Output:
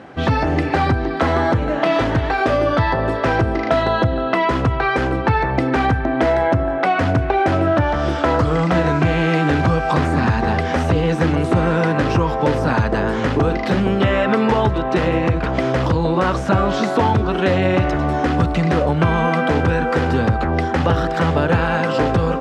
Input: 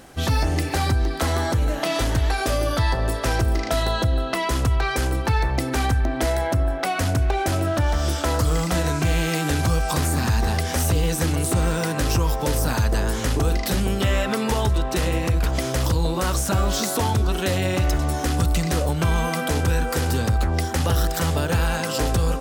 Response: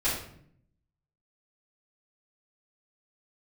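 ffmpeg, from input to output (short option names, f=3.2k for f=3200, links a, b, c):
-af "highpass=120,lowpass=2.2k,volume=8dB"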